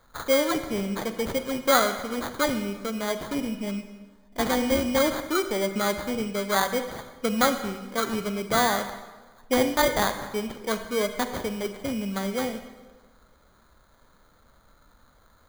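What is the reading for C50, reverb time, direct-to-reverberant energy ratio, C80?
10.0 dB, 1.3 s, 9.0 dB, 11.0 dB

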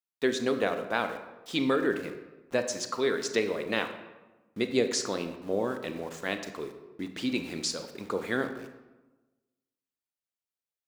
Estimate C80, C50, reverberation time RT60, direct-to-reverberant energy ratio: 11.0 dB, 9.5 dB, 1.1 s, 7.5 dB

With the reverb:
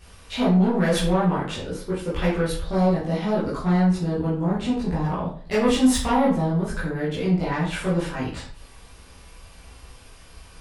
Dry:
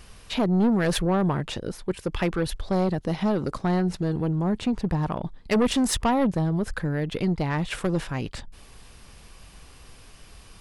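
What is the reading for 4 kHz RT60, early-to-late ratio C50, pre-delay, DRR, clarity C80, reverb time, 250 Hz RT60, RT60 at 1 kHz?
0.35 s, 4.5 dB, 12 ms, -9.5 dB, 9.0 dB, 0.45 s, 0.50 s, 0.45 s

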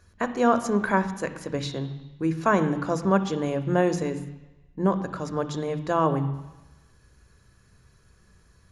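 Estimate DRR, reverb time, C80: 10.0 dB, 1.1 s, 14.0 dB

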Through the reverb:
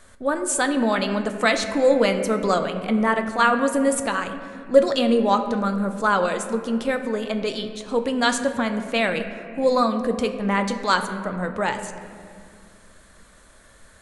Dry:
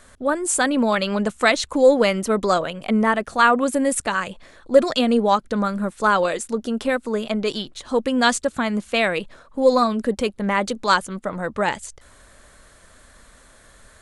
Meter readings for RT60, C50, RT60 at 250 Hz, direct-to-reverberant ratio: 2.2 s, 9.0 dB, 3.4 s, 6.5 dB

